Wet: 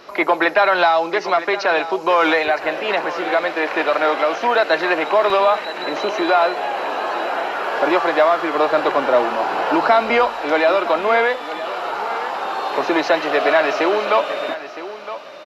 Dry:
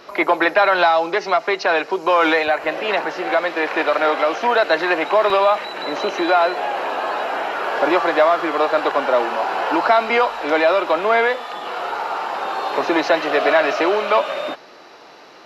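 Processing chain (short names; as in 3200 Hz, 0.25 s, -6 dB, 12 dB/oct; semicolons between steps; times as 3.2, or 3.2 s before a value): 8.55–10.28 low shelf 180 Hz +11 dB; echo 0.964 s -13.5 dB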